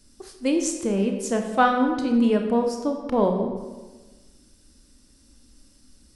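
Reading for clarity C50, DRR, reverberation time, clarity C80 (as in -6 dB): 6.0 dB, 3.5 dB, 1.3 s, 7.5 dB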